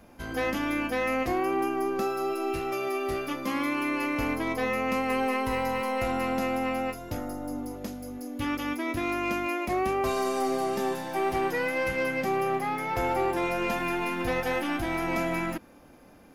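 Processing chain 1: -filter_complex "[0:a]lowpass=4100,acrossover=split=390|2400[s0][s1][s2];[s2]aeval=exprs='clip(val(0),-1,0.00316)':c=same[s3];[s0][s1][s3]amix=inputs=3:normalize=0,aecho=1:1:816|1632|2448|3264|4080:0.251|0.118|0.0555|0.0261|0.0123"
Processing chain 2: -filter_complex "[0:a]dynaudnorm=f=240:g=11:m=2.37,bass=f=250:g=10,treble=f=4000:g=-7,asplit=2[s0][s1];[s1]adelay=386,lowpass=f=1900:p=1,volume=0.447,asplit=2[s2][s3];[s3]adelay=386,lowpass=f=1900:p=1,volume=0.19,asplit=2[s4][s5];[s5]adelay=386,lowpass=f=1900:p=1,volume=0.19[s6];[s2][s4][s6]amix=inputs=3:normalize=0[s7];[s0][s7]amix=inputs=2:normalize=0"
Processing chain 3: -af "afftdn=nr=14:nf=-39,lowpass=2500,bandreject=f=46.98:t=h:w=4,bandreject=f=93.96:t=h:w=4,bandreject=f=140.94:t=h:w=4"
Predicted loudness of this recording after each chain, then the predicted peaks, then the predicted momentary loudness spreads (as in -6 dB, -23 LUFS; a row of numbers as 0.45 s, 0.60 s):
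-29.0 LUFS, -19.5 LUFS, -29.5 LUFS; -15.5 dBFS, -4.0 dBFS, -17.5 dBFS; 7 LU, 7 LU, 7 LU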